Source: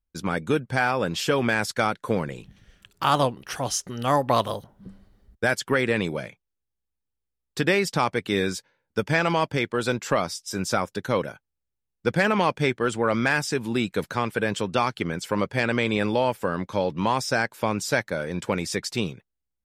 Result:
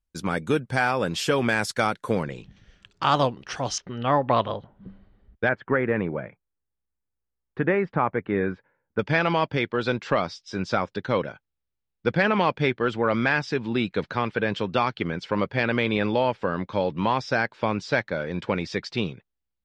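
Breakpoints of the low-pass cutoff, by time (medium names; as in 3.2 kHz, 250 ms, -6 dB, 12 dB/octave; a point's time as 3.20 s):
low-pass 24 dB/octave
12 kHz
from 2.23 s 6.3 kHz
from 3.78 s 3.4 kHz
from 5.49 s 1.9 kHz
from 8.99 s 4.5 kHz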